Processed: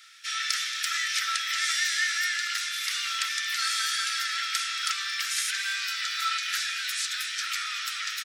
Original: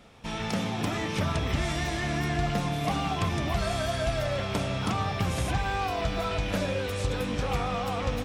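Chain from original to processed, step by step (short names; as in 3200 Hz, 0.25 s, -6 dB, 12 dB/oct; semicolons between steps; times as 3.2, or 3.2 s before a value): rippled Chebyshev high-pass 1300 Hz, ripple 6 dB; high shelf 3800 Hz +7 dB; echo 0.227 s -14.5 dB; gain +8.5 dB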